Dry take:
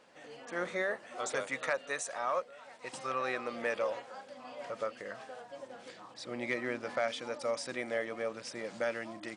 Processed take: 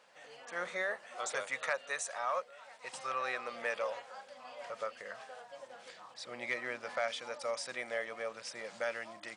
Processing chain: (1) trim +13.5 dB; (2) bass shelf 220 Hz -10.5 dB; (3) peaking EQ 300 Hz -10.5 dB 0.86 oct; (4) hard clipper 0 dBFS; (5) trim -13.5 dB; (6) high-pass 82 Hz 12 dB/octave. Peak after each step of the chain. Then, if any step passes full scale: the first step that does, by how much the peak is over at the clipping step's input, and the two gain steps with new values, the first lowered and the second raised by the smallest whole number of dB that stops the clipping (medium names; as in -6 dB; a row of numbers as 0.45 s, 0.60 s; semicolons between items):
-7.0 dBFS, -6.5 dBFS, -6.0 dBFS, -6.0 dBFS, -19.5 dBFS, -19.0 dBFS; nothing clips